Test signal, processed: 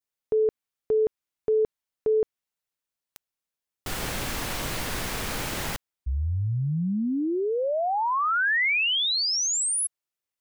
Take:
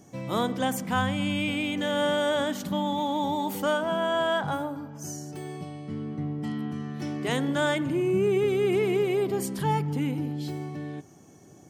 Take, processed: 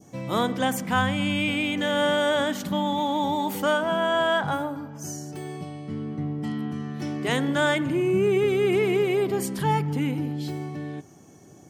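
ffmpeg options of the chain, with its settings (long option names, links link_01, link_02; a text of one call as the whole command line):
ffmpeg -i in.wav -af "adynamicequalizer=threshold=0.01:dfrequency=1900:dqfactor=0.93:tfrequency=1900:tqfactor=0.93:attack=5:release=100:ratio=0.375:range=1.5:mode=boostabove:tftype=bell,volume=2dB" out.wav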